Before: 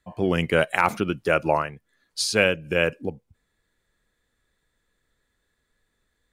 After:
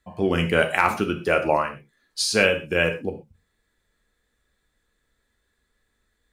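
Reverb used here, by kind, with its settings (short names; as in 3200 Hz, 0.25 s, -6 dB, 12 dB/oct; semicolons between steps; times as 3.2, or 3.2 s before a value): non-linear reverb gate 0.15 s falling, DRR 4.5 dB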